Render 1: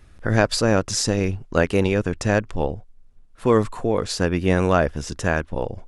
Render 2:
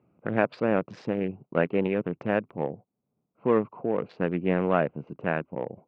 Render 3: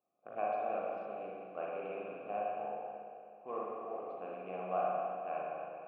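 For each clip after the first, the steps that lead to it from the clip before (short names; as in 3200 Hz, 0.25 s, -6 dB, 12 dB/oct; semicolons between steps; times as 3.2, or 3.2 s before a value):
Wiener smoothing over 25 samples; Chebyshev band-pass 150–2600 Hz, order 3; gain -4.5 dB
ending faded out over 0.51 s; vowel filter a; spring tank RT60 2.4 s, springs 38/53 ms, chirp 45 ms, DRR -5.5 dB; gain -7 dB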